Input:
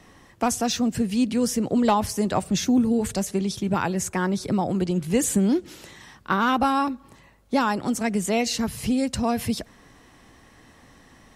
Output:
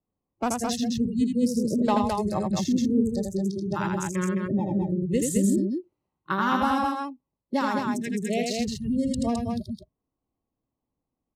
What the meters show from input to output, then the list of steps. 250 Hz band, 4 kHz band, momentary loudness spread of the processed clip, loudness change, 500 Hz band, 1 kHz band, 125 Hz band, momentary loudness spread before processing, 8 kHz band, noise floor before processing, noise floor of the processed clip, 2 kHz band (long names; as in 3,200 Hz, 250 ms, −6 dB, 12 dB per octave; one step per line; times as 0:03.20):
−1.5 dB, −5.5 dB, 8 LU, −2.5 dB, −2.5 dB, −2.5 dB, −1.0 dB, 6 LU, −6.0 dB, −53 dBFS, below −85 dBFS, −3.5 dB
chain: adaptive Wiener filter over 25 samples
noise reduction from a noise print of the clip's start 29 dB
loudspeakers that aren't time-aligned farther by 28 metres −4 dB, 73 metres −4 dB
level −3.5 dB